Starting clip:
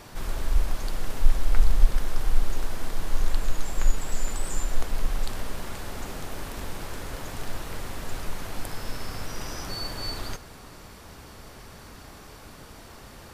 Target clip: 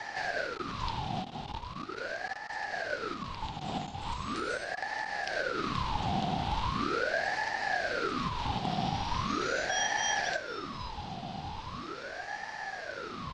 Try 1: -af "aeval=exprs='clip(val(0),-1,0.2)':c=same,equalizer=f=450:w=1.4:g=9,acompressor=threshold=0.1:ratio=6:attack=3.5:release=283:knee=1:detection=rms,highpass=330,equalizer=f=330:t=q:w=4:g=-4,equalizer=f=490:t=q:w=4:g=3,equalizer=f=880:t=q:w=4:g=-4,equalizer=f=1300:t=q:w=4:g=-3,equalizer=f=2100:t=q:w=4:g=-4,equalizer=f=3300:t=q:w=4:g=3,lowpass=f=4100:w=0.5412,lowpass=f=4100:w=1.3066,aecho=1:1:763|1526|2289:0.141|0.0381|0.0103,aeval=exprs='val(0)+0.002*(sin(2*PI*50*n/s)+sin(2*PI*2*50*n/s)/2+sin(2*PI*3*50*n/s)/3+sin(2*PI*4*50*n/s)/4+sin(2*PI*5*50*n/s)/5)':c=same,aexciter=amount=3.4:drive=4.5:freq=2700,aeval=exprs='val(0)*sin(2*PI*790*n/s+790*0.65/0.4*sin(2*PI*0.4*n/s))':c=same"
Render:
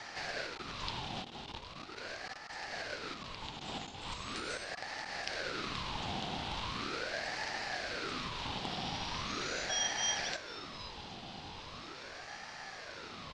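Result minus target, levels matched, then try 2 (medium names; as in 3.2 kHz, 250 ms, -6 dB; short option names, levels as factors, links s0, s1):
500 Hz band -2.5 dB
-af "aeval=exprs='clip(val(0),-1,0.2)':c=same,equalizer=f=450:w=1.4:g=21,acompressor=threshold=0.1:ratio=6:attack=3.5:release=283:knee=1:detection=rms,highpass=330,equalizer=f=330:t=q:w=4:g=-4,equalizer=f=490:t=q:w=4:g=3,equalizer=f=880:t=q:w=4:g=-4,equalizer=f=1300:t=q:w=4:g=-3,equalizer=f=2100:t=q:w=4:g=-4,equalizer=f=3300:t=q:w=4:g=3,lowpass=f=4100:w=0.5412,lowpass=f=4100:w=1.3066,aecho=1:1:763|1526|2289:0.141|0.0381|0.0103,aeval=exprs='val(0)+0.002*(sin(2*PI*50*n/s)+sin(2*PI*2*50*n/s)/2+sin(2*PI*3*50*n/s)/3+sin(2*PI*4*50*n/s)/4+sin(2*PI*5*50*n/s)/5)':c=same,aexciter=amount=3.4:drive=4.5:freq=2700,aeval=exprs='val(0)*sin(2*PI*790*n/s+790*0.65/0.4*sin(2*PI*0.4*n/s))':c=same"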